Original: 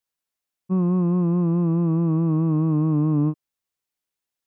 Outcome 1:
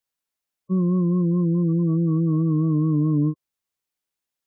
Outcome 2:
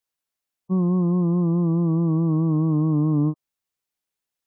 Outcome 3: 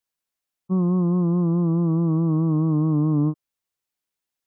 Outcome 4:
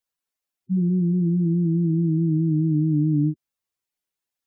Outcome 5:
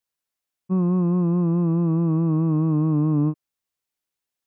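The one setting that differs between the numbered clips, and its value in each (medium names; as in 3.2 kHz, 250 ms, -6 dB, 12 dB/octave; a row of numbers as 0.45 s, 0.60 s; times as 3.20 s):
spectral gate, under each frame's peak: -25 dB, -35 dB, -45 dB, -10 dB, -60 dB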